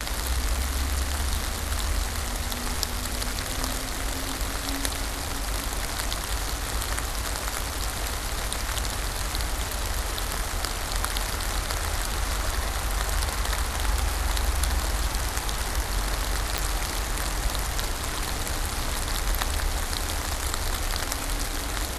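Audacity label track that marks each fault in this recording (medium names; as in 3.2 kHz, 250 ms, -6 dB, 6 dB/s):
0.590000	0.590000	dropout 3.8 ms
16.580000	16.580000	pop -7 dBFS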